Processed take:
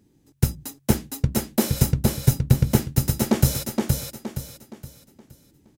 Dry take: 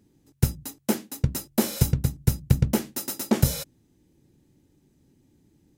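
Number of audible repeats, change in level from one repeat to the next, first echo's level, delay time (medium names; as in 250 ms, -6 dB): 4, -9.0 dB, -3.5 dB, 469 ms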